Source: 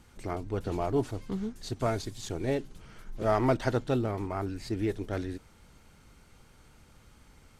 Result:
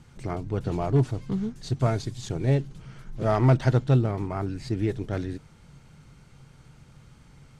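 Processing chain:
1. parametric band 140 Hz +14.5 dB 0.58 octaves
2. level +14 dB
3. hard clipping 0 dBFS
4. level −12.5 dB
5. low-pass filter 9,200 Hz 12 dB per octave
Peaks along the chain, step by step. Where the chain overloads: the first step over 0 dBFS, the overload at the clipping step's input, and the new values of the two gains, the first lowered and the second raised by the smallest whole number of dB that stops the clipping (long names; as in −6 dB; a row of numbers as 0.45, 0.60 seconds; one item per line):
−10.0, +4.0, 0.0, −12.5, −12.5 dBFS
step 2, 4.0 dB
step 2 +10 dB, step 4 −8.5 dB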